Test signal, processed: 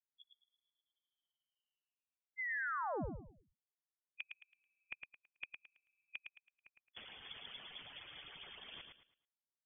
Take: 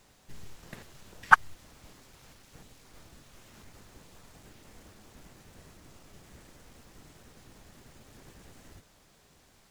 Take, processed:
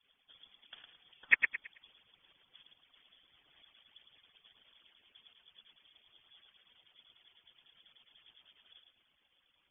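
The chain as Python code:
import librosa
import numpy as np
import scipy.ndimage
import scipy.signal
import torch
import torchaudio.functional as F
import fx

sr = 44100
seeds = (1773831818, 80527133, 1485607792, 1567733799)

y = fx.hpss_only(x, sr, part='percussive')
y = fx.echo_feedback(y, sr, ms=109, feedback_pct=29, wet_db=-5.5)
y = fx.freq_invert(y, sr, carrier_hz=3400)
y = F.gain(torch.from_numpy(y), -8.5).numpy()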